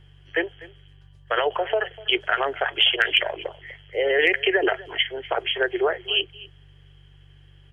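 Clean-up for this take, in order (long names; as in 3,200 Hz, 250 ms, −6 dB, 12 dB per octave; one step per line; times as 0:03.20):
clipped peaks rebuilt −7 dBFS
hum removal 47.9 Hz, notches 3
echo removal 247 ms −20 dB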